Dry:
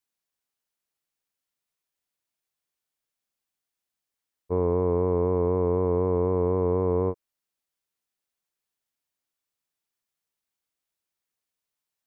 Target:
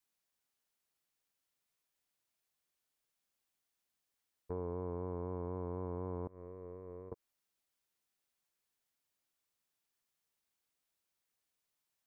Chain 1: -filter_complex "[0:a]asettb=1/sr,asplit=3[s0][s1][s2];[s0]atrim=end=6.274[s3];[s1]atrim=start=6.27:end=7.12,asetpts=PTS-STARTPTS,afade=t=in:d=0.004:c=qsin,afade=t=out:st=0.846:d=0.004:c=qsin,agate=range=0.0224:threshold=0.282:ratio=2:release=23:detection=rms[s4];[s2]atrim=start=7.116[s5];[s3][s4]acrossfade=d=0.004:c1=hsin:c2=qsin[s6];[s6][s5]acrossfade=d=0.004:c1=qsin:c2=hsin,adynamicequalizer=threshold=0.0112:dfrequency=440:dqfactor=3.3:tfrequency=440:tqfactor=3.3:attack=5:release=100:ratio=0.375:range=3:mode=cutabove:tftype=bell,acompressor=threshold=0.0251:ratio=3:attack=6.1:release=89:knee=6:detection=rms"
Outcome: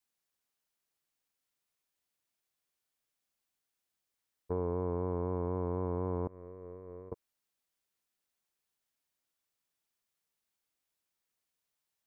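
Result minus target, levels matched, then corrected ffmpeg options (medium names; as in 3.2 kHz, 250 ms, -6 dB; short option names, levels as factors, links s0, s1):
compression: peak gain reduction -6.5 dB
-filter_complex "[0:a]asettb=1/sr,asplit=3[s0][s1][s2];[s0]atrim=end=6.274[s3];[s1]atrim=start=6.27:end=7.12,asetpts=PTS-STARTPTS,afade=t=in:d=0.004:c=qsin,afade=t=out:st=0.846:d=0.004:c=qsin,agate=range=0.0224:threshold=0.282:ratio=2:release=23:detection=rms[s4];[s2]atrim=start=7.116[s5];[s3][s4]acrossfade=d=0.004:c1=hsin:c2=qsin[s6];[s6][s5]acrossfade=d=0.004:c1=qsin:c2=hsin,adynamicequalizer=threshold=0.0112:dfrequency=440:dqfactor=3.3:tfrequency=440:tqfactor=3.3:attack=5:release=100:ratio=0.375:range=3:mode=cutabove:tftype=bell,acompressor=threshold=0.00841:ratio=3:attack=6.1:release=89:knee=6:detection=rms"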